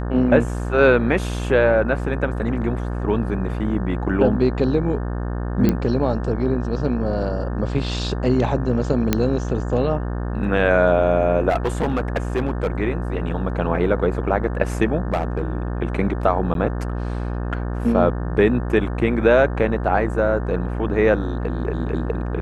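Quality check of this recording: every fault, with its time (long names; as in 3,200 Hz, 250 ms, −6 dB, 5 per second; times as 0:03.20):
mains buzz 60 Hz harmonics 30 −25 dBFS
0:05.69: click −7 dBFS
0:09.13: click −3 dBFS
0:11.49–0:12.67: clipping −15.5 dBFS
0:15.12–0:15.41: clipping −15.5 dBFS
0:16.54–0:16.55: drop-out 12 ms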